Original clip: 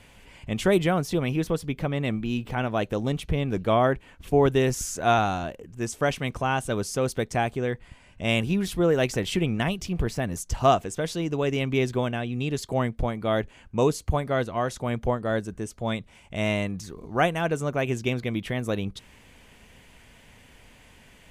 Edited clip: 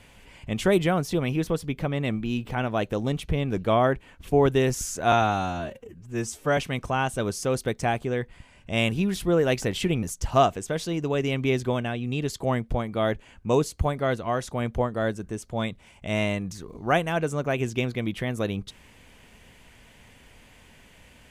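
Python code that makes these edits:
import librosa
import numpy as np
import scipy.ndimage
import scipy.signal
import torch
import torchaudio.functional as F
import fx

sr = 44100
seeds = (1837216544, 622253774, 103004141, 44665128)

y = fx.edit(x, sr, fx.stretch_span(start_s=5.12, length_s=0.97, factor=1.5),
    fx.cut(start_s=9.54, length_s=0.77), tone=tone)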